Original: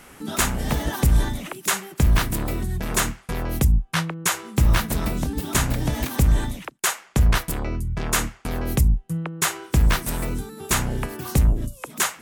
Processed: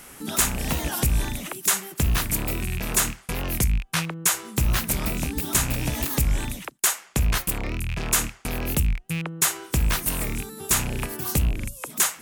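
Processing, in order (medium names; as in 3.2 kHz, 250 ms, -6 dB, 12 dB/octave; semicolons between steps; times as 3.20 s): rattle on loud lows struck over -27 dBFS, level -21 dBFS; in parallel at -1 dB: compression, threshold -23 dBFS, peak gain reduction 10.5 dB; on the sum: treble shelf 5 kHz +10 dB; saturation -1.5 dBFS, distortion -25 dB; warped record 45 rpm, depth 160 cents; trim -7 dB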